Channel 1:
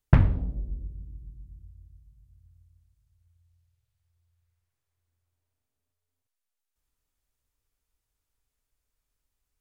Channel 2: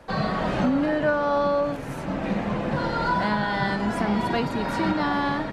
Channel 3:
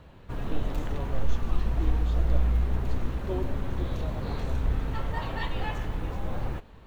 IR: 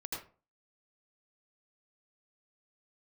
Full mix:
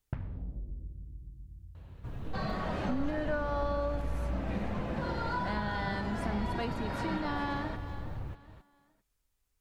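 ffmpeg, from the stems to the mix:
-filter_complex "[0:a]acompressor=threshold=0.0398:ratio=6,volume=1.06,asplit=2[s0][s1];[s1]volume=0.188[s2];[1:a]adelay=2250,volume=0.841,asplit=2[s3][s4];[s4]volume=0.178[s5];[2:a]equalizer=f=100:t=o:w=1.3:g=9.5,adelay=1750,volume=0.501[s6];[3:a]atrim=start_sample=2205[s7];[s2][s7]afir=irnorm=-1:irlink=0[s8];[s5]aecho=0:1:417|834|1251:1|0.21|0.0441[s9];[s0][s3][s6][s8][s9]amix=inputs=5:normalize=0,acompressor=threshold=0.00501:ratio=1.5"

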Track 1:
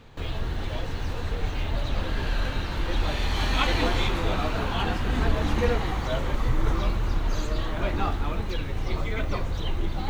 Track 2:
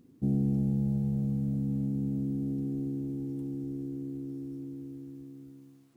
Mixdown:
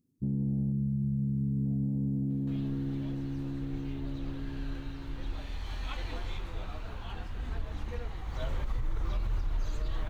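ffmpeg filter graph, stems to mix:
-filter_complex "[0:a]asubboost=boost=2:cutoff=130,adelay=2300,volume=0.376,afade=t=in:st=8.24:d=0.27:silence=0.375837[s0];[1:a]afwtdn=0.0224,bass=f=250:g=9,treble=f=4000:g=13,volume=0.531[s1];[s0][s1]amix=inputs=2:normalize=0,alimiter=limit=0.0631:level=0:latency=1:release=107"

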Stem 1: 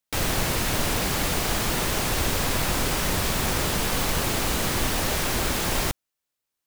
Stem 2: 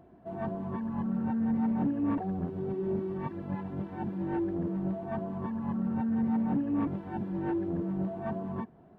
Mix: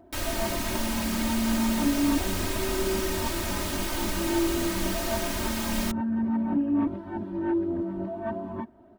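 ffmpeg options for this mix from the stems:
-filter_complex "[0:a]volume=0.355[s0];[1:a]volume=1[s1];[s0][s1]amix=inputs=2:normalize=0,aecho=1:1:3.2:0.95"

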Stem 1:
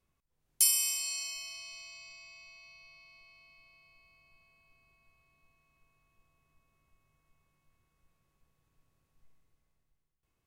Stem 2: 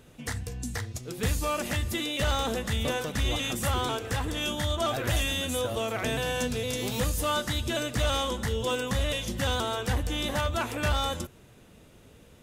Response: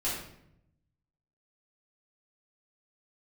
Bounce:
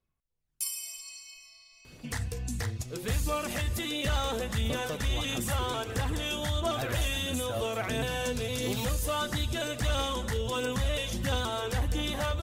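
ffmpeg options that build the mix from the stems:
-filter_complex "[0:a]aphaser=in_gain=1:out_gain=1:delay=2.5:decay=0.41:speed=0.31:type=sinusoidal,volume=0.316[s0];[1:a]alimiter=limit=0.0668:level=0:latency=1:release=63,adelay=1850,volume=1[s1];[s0][s1]amix=inputs=2:normalize=0,aphaser=in_gain=1:out_gain=1:delay=2.3:decay=0.3:speed=1.5:type=triangular"

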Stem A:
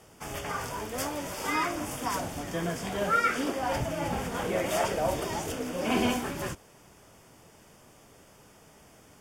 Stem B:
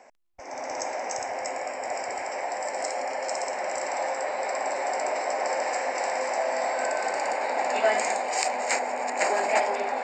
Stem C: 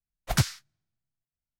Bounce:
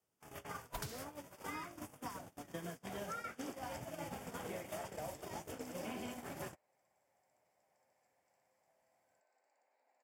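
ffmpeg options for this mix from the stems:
-filter_complex "[0:a]highpass=82,acrossover=split=160|2400[s0][s1][s2];[s0]acompressor=threshold=0.00355:ratio=4[s3];[s1]acompressor=threshold=0.01:ratio=4[s4];[s2]acompressor=threshold=0.00224:ratio=4[s5];[s3][s4][s5]amix=inputs=3:normalize=0,volume=1.19[s6];[1:a]adelay=2300,volume=0.133[s7];[2:a]alimiter=limit=0.0794:level=0:latency=1:release=165,adelay=450,volume=0.668[s8];[s6][s7][s8]amix=inputs=3:normalize=0,agate=range=0.02:threshold=0.0141:ratio=16:detection=peak,highshelf=f=11000:g=11.5,acompressor=threshold=0.00891:ratio=6"

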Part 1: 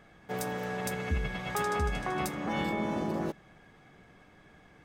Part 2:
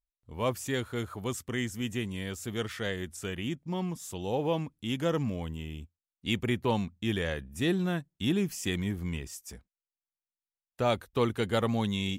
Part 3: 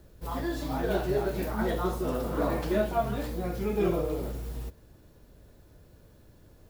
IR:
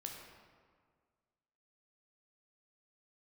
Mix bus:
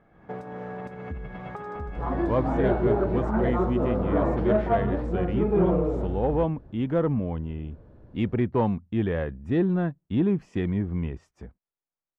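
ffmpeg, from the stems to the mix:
-filter_complex "[0:a]aemphasis=mode=production:type=50kf,acompressor=threshold=0.0141:ratio=6,volume=0.75[s0];[1:a]adelay=1900,volume=0.794[s1];[2:a]adelay=1750,volume=0.75[s2];[s0][s1][s2]amix=inputs=3:normalize=0,lowpass=1200,dynaudnorm=f=110:g=3:m=2.51,asoftclip=type=tanh:threshold=0.251"

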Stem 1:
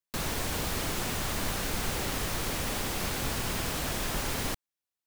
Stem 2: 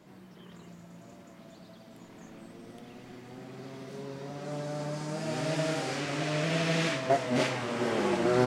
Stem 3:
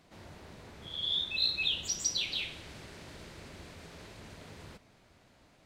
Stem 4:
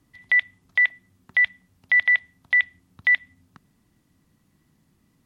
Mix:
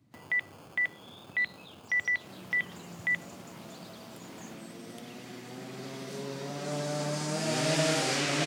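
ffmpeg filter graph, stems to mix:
-filter_complex "[0:a]acrusher=samples=23:mix=1:aa=0.000001,volume=0.282[s0];[1:a]highshelf=f=2700:g=9,adelay=2200,volume=1.26[s1];[2:a]highshelf=f=8500:g=10.5,volume=0.15[s2];[3:a]aemphasis=mode=reproduction:type=riaa,volume=0.398[s3];[s0][s2]amix=inputs=2:normalize=0,acompressor=threshold=0.00316:ratio=2.5,volume=1[s4];[s1][s3][s4]amix=inputs=3:normalize=0,highpass=f=110:w=0.5412,highpass=f=110:w=1.3066"

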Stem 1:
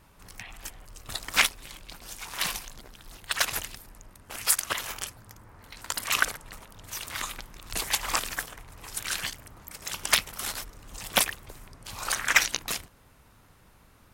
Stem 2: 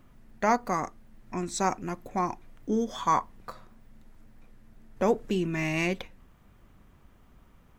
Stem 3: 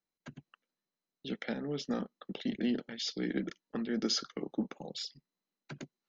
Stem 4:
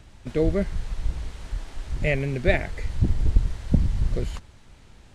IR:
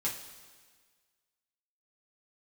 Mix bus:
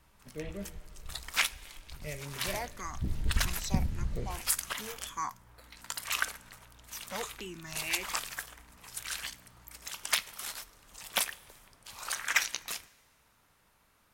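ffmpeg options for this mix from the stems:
-filter_complex "[0:a]lowshelf=f=460:g=-9.5,volume=0.447,asplit=2[s0][s1];[s1]volume=0.15[s2];[1:a]aeval=exprs='val(0)+0.01*(sin(2*PI*60*n/s)+sin(2*PI*2*60*n/s)/2+sin(2*PI*3*60*n/s)/3+sin(2*PI*4*60*n/s)/4+sin(2*PI*5*60*n/s)/5)':c=same,tiltshelf=f=1400:g=-8,asplit=2[s3][s4];[s4]afreqshift=-1.7[s5];[s3][s5]amix=inputs=2:normalize=1,adelay=2100,volume=0.398[s6];[3:a]volume=0.224,afade=t=in:st=2.84:d=0.34:silence=0.354813,asplit=2[s7][s8];[s8]volume=0.562[s9];[4:a]atrim=start_sample=2205[s10];[s2][s9]amix=inputs=2:normalize=0[s11];[s11][s10]afir=irnorm=-1:irlink=0[s12];[s0][s6][s7][s12]amix=inputs=4:normalize=0"

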